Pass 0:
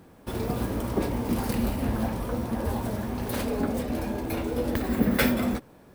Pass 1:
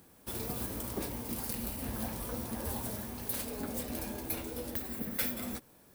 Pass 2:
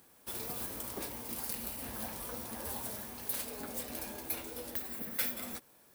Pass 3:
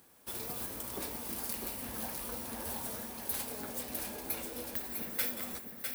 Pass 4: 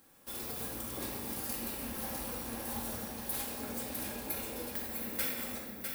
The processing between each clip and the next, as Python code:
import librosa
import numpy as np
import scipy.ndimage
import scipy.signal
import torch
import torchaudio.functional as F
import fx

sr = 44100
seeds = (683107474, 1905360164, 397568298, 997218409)

y1 = F.preemphasis(torch.from_numpy(x), 0.8).numpy()
y1 = fx.rider(y1, sr, range_db=4, speed_s=0.5)
y2 = fx.low_shelf(y1, sr, hz=370.0, db=-10.5)
y3 = y2 + 10.0 ** (-5.5 / 20.0) * np.pad(y2, (int(653 * sr / 1000.0), 0))[:len(y2)]
y4 = fx.room_shoebox(y3, sr, seeds[0], volume_m3=1300.0, walls='mixed', distance_m=2.2)
y4 = y4 * librosa.db_to_amplitude(-3.0)